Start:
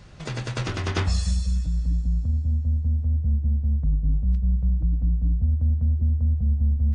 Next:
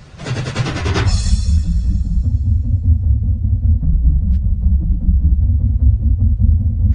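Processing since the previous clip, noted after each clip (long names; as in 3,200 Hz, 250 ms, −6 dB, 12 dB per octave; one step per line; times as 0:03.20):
random phases in long frames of 50 ms
level +8 dB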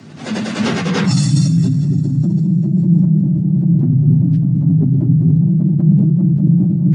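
mains hum 60 Hz, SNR 25 dB
frequency shifter +90 Hz
level that may fall only so fast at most 24 dB per second
level −1 dB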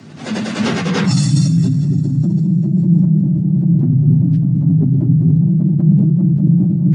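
no processing that can be heard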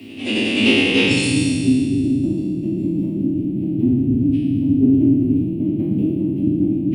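peak hold with a decay on every bin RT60 1.80 s
drawn EQ curve 100 Hz 0 dB, 160 Hz −20 dB, 270 Hz +8 dB, 660 Hz −7 dB, 1,500 Hz −16 dB, 2,700 Hz +13 dB, 4,000 Hz −2 dB, 6,500 Hz −12 dB, 11,000 Hz +10 dB
level −1.5 dB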